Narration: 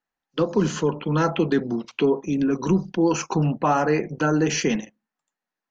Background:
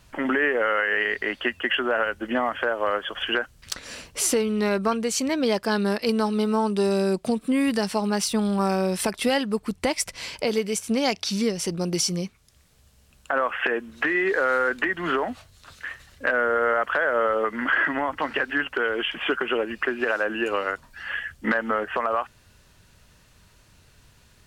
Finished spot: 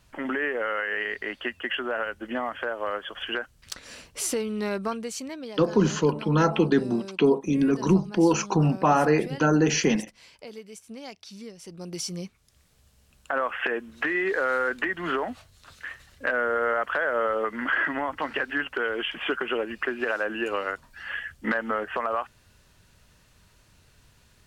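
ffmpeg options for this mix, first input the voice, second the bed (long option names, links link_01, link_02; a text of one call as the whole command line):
ffmpeg -i stem1.wav -i stem2.wav -filter_complex "[0:a]adelay=5200,volume=0dB[link_01];[1:a]volume=9dB,afade=type=out:start_time=4.83:duration=0.7:silence=0.251189,afade=type=in:start_time=11.62:duration=0.98:silence=0.188365[link_02];[link_01][link_02]amix=inputs=2:normalize=0" out.wav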